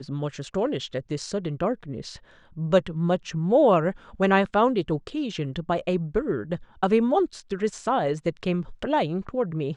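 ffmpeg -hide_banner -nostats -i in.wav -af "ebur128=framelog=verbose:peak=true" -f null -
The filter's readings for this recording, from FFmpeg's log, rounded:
Integrated loudness:
  I:         -25.3 LUFS
  Threshold: -35.5 LUFS
Loudness range:
  LRA:         3.3 LU
  Threshold: -44.9 LUFS
  LRA low:   -26.5 LUFS
  LRA high:  -23.2 LUFS
True peak:
  Peak:       -6.7 dBFS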